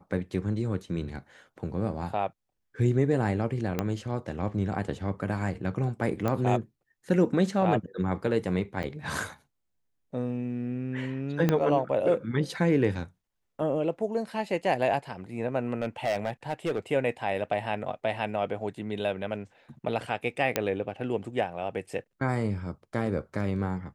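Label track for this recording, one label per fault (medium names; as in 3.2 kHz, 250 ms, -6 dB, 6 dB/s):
3.790000	3.790000	pop -13 dBFS
6.280000	6.280000	pop -16 dBFS
8.830000	8.840000	dropout 6.1 ms
11.490000	11.490000	pop -11 dBFS
15.820000	16.790000	clipped -23 dBFS
20.560000	20.560000	pop -8 dBFS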